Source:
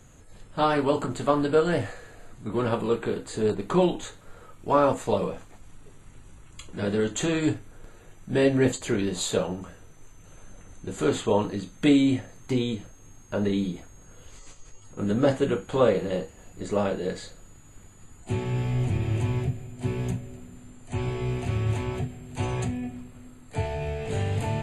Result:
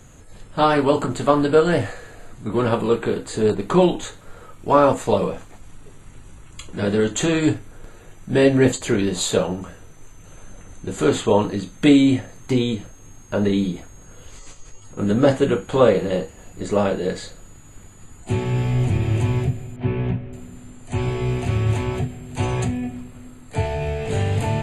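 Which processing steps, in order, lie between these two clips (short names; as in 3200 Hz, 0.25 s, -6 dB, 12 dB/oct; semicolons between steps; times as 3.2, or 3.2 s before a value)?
19.76–20.33 LPF 3000 Hz 24 dB/oct; gain +6 dB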